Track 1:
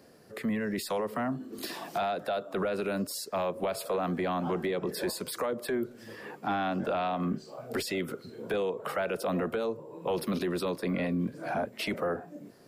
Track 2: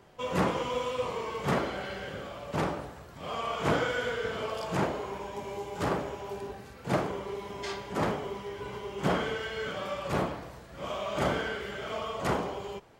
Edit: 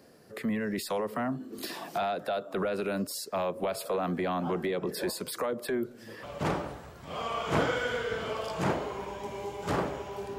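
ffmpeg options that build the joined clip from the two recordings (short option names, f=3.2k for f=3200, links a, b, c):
-filter_complex "[0:a]apad=whole_dur=10.38,atrim=end=10.38,atrim=end=6.232[a];[1:a]atrim=start=2.358:end=6.51[b];[a][b]acrossfade=d=0.004:c1=hsin:c2=hsin"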